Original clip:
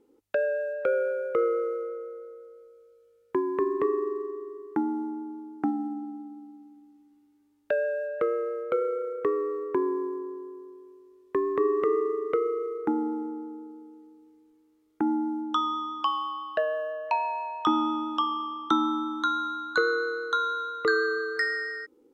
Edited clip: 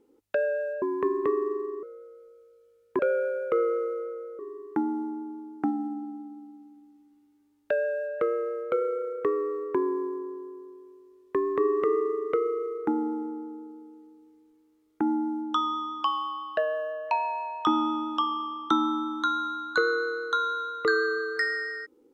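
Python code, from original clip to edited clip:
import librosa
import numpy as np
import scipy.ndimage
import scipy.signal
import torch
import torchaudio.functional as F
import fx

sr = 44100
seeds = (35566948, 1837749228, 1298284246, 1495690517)

y = fx.edit(x, sr, fx.swap(start_s=0.82, length_s=1.4, other_s=3.38, other_length_s=1.01), tone=tone)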